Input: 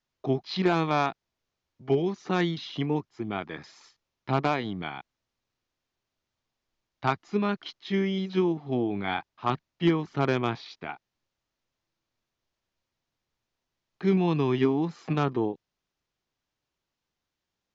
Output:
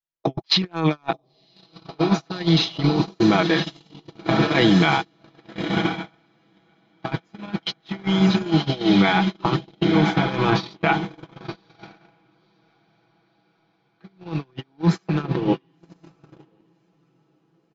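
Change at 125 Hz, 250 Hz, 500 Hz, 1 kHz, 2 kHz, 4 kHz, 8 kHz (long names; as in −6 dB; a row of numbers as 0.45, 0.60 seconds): +8.0 dB, +7.5 dB, +3.5 dB, +5.5 dB, +9.5 dB, +13.5 dB, can't be measured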